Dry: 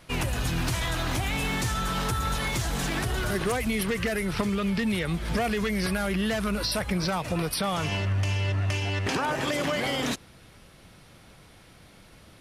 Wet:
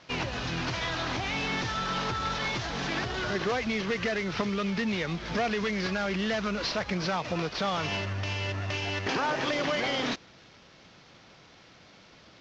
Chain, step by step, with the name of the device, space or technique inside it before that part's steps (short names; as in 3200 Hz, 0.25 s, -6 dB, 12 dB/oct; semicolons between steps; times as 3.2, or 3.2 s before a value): early wireless headset (HPF 220 Hz 6 dB/oct; CVSD 32 kbps); LPF 7600 Hz 24 dB/oct